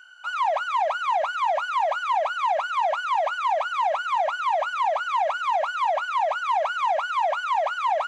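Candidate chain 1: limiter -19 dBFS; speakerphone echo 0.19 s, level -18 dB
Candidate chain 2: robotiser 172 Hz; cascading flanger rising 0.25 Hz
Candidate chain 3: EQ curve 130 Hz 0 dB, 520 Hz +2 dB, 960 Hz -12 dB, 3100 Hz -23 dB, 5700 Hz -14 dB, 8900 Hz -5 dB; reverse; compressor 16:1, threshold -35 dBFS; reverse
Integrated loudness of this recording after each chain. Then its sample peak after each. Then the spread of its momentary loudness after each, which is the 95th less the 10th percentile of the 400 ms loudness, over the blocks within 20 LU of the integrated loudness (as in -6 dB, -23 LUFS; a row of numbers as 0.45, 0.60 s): -26.0, -31.5, -40.5 LUFS; -18.5, -16.5, -26.5 dBFS; 1, 3, 1 LU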